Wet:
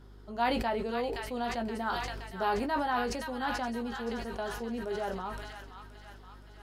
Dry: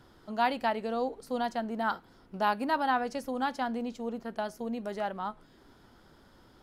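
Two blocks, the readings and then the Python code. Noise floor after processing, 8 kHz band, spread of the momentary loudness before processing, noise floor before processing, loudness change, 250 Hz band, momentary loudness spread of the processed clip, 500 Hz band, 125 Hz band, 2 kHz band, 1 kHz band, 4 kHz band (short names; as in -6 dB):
-51 dBFS, +5.5 dB, 9 LU, -60 dBFS, -1.0 dB, -1.0 dB, 19 LU, 0.0 dB, n/a, 0.0 dB, -2.0 dB, +2.0 dB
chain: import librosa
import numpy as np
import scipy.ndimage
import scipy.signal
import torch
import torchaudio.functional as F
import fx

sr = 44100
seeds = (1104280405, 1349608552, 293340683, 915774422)

y = fx.peak_eq(x, sr, hz=400.0, db=10.0, octaves=0.21)
y = fx.add_hum(y, sr, base_hz=50, snr_db=17)
y = fx.doubler(y, sr, ms=17.0, db=-8.0)
y = fx.echo_wet_highpass(y, sr, ms=522, feedback_pct=57, hz=1500.0, wet_db=-3)
y = fx.sustainer(y, sr, db_per_s=34.0)
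y = F.gain(torch.from_numpy(y), -4.5).numpy()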